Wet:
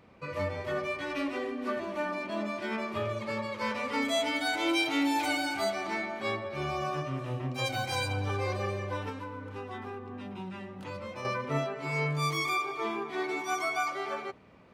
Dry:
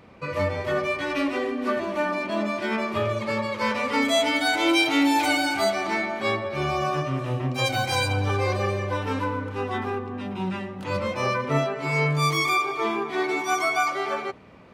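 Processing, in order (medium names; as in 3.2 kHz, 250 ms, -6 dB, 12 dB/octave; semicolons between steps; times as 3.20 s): 9.09–11.25 s: compression, threshold -29 dBFS, peak gain reduction 7.5 dB; trim -7.5 dB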